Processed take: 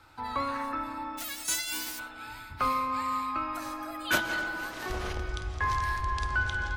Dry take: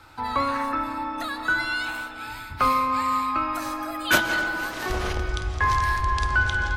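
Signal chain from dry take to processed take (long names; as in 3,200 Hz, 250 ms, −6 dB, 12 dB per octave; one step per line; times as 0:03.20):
0:01.17–0:01.98: spectral envelope flattened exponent 0.1
level −7 dB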